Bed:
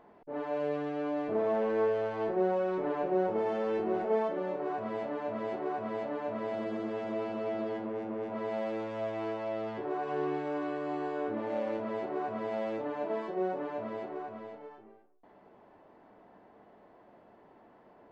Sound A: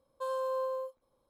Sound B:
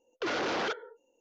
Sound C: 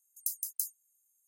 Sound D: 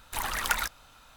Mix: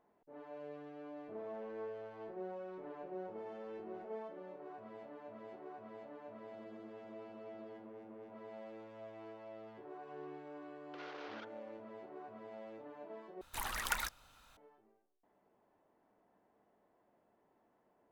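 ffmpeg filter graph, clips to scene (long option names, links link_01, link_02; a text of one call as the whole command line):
ffmpeg -i bed.wav -i cue0.wav -i cue1.wav -i cue2.wav -i cue3.wav -filter_complex "[0:a]volume=-16dB[link_01];[2:a]highpass=610,lowpass=4100[link_02];[link_01]asplit=2[link_03][link_04];[link_03]atrim=end=13.414[link_05];[4:a]atrim=end=1.16,asetpts=PTS-STARTPTS,volume=-8.5dB[link_06];[link_04]atrim=start=14.566[link_07];[link_02]atrim=end=1.2,asetpts=PTS-STARTPTS,volume=-17.5dB,afade=type=in:duration=0.004:curve=hsin,afade=type=out:start_time=1.196:duration=0.004:curve=hsin,adelay=10720[link_08];[link_05][link_06]acrossfade=duration=0.004:curve1=hsin:curve2=hsin[link_09];[link_09][link_07]acrossfade=duration=0.004:curve1=hsin:curve2=hsin[link_10];[link_10][link_08]amix=inputs=2:normalize=0" out.wav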